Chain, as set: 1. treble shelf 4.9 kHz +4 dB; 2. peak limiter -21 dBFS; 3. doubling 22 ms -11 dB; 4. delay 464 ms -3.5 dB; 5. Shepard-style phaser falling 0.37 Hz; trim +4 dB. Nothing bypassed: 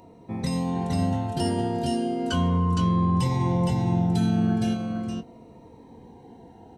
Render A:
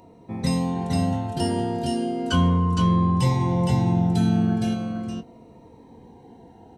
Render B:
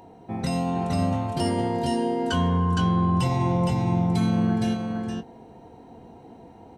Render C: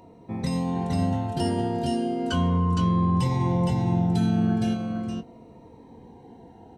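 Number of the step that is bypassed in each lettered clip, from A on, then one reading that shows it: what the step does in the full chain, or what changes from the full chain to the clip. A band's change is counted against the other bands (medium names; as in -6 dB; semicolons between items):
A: 2, momentary loudness spread change +1 LU; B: 5, 2 kHz band +3.0 dB; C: 1, 8 kHz band -2.5 dB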